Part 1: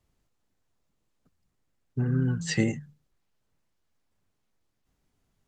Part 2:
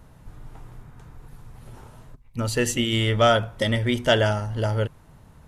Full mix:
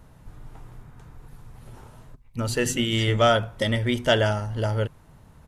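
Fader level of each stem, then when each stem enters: -10.0 dB, -1.0 dB; 0.50 s, 0.00 s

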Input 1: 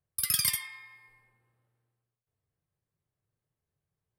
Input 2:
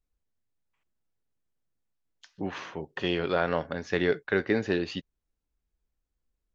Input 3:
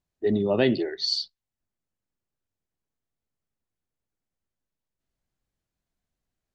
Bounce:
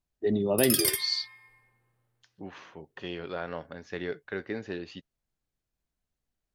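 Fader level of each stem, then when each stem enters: +1.0 dB, -9.0 dB, -3.0 dB; 0.40 s, 0.00 s, 0.00 s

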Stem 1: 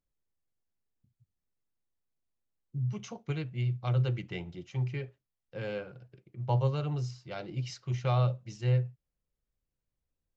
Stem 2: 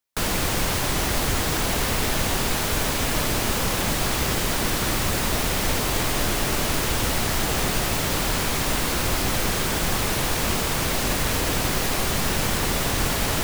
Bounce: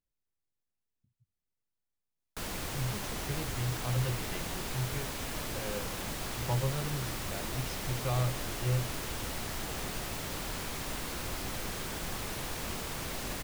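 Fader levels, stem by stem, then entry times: -4.0 dB, -14.0 dB; 0.00 s, 2.20 s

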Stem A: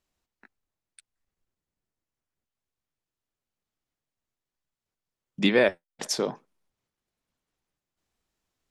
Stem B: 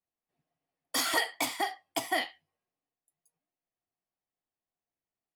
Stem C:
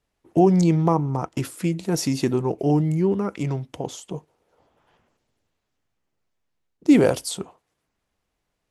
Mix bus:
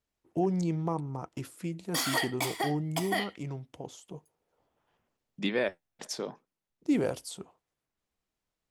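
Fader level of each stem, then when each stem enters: -8.5 dB, -1.5 dB, -12.0 dB; 0.00 s, 1.00 s, 0.00 s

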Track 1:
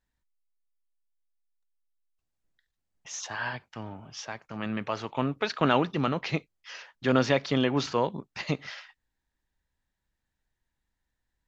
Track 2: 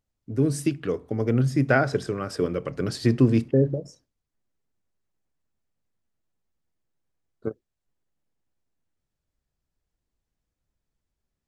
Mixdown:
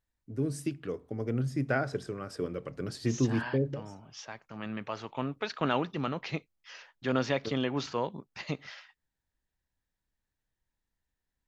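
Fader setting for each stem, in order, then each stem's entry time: -5.5 dB, -9.0 dB; 0.00 s, 0.00 s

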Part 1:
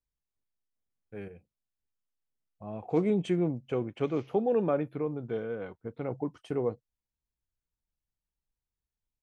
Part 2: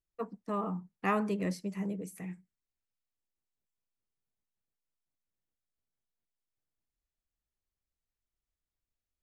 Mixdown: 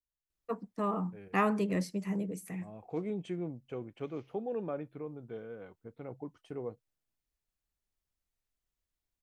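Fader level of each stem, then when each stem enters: -9.5 dB, +1.5 dB; 0.00 s, 0.30 s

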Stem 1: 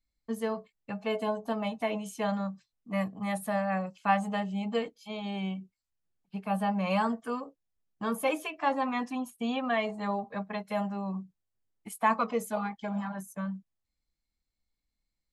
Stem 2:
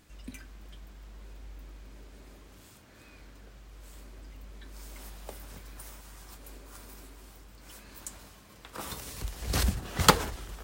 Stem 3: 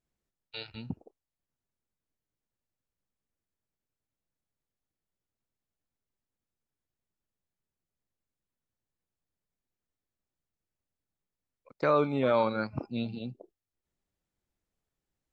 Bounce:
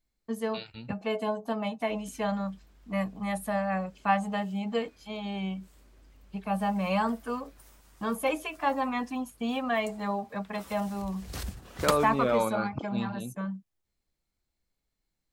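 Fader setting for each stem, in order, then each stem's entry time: +0.5 dB, -9.5 dB, -1.0 dB; 0.00 s, 1.80 s, 0.00 s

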